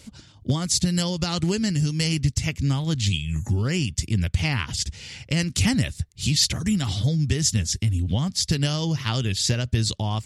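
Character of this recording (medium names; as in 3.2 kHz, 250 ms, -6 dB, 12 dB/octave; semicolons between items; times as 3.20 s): noise floor -51 dBFS; spectral tilt -4.5 dB/octave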